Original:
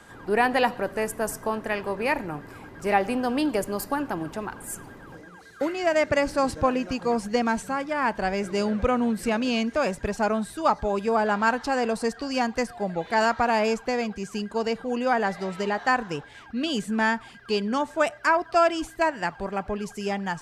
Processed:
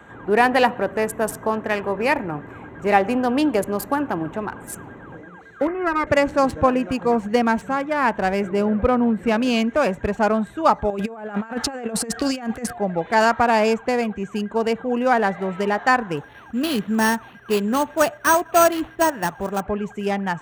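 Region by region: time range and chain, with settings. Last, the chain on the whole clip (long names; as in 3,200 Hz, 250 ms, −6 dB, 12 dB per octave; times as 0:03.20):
0:05.67–0:06.07: lower of the sound and its delayed copy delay 2.4 ms + low-pass filter 1,900 Hz 24 dB per octave + notch filter 810 Hz, Q 7.8
0:08.49–0:09.27: high-shelf EQ 2,600 Hz −8.5 dB + notch filter 6,400 Hz, Q 8.8
0:10.90–0:12.73: high-shelf EQ 7,400 Hz +11 dB + notch filter 990 Hz, Q 6.6 + compressor whose output falls as the input rises −30 dBFS, ratio −0.5
0:16.17–0:19.61: variable-slope delta modulation 32 kbit/s + notch filter 2,200 Hz, Q 6.3 + bad sample-rate conversion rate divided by 6×, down none, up hold
whole clip: adaptive Wiener filter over 9 samples; high-pass filter 53 Hz; level +5.5 dB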